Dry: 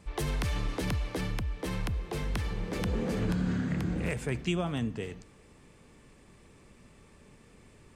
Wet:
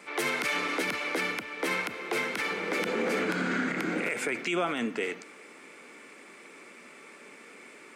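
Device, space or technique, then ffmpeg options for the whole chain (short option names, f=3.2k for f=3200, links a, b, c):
laptop speaker: -af "highpass=f=270:w=0.5412,highpass=f=270:w=1.3066,equalizer=f=1.4k:t=o:w=0.26:g=9.5,equalizer=f=2.2k:t=o:w=0.36:g=11,alimiter=level_in=4dB:limit=-24dB:level=0:latency=1:release=36,volume=-4dB,volume=8dB"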